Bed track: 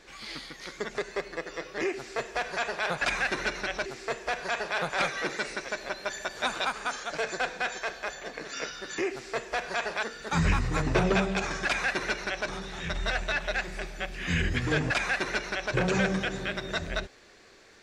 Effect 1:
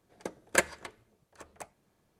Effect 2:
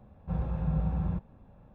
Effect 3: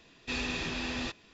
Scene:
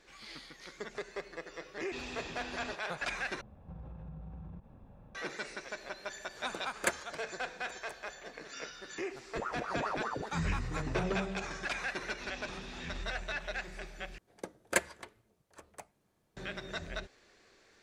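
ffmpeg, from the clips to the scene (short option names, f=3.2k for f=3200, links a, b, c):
-filter_complex "[3:a]asplit=2[a][b];[2:a]asplit=2[c][d];[1:a]asplit=2[e][f];[0:a]volume=-8.5dB[g];[a]equalizer=f=710:w=1.5:g=5[h];[c]acompressor=threshold=-42dB:ratio=10:attack=1.3:release=62:knee=1:detection=rms[i];[d]aeval=exprs='val(0)*sin(2*PI*780*n/s+780*0.75/4.9*sin(2*PI*4.9*n/s))':c=same[j];[g]asplit=3[k][l][m];[k]atrim=end=3.414[n];[i]atrim=end=1.74,asetpts=PTS-STARTPTS,volume=-0.5dB[o];[l]atrim=start=5.146:end=14.184[p];[f]atrim=end=2.19,asetpts=PTS-STARTPTS,volume=-4dB[q];[m]atrim=start=16.366[r];[h]atrim=end=1.33,asetpts=PTS-STARTPTS,volume=-10dB,afade=t=in:d=0.004:c=hsin,afade=t=out:st=1.326:d=0.004:c=hsin,adelay=1640[s];[e]atrim=end=2.19,asetpts=PTS-STARTPTS,volume=-6.5dB,afade=t=in:d=0.004:c=hsin,afade=t=out:st=2.186:d=0.004:c=hsin,adelay=6290[t];[j]atrim=end=1.74,asetpts=PTS-STARTPTS,volume=-5.5dB,afade=t=in:d=0.004:c=hsin,afade=t=out:st=1.736:d=0.004:c=hsin,adelay=9070[u];[b]atrim=end=1.33,asetpts=PTS-STARTPTS,volume=-13.5dB,afade=t=in:d=0.004:c=hsin,afade=t=out:st=1.326:d=0.004:c=hsin,adelay=11920[v];[n][o]acrossfade=d=0.004:c1=hsin:c2=hsin[w];[w][p]acrossfade=d=0.004:c1=hsin:c2=hsin[x];[x][q]acrossfade=d=0.004:c1=hsin:c2=hsin[y];[y][r]acrossfade=d=0.004:c1=hsin:c2=hsin[z];[z][s][t][u][v]amix=inputs=5:normalize=0"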